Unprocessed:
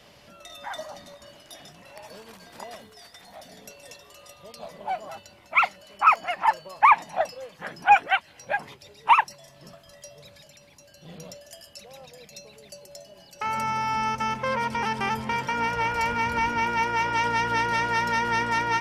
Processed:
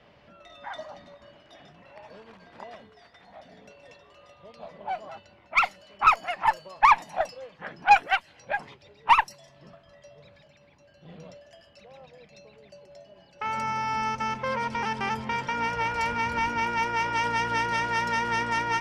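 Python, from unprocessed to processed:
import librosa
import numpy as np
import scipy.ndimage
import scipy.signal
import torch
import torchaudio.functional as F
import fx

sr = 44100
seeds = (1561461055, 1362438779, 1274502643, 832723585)

y = fx.cheby_harmonics(x, sr, harmonics=(3, 4), levels_db=(-22, -24), full_scale_db=-5.0)
y = fx.env_lowpass(y, sr, base_hz=2400.0, full_db=-20.5)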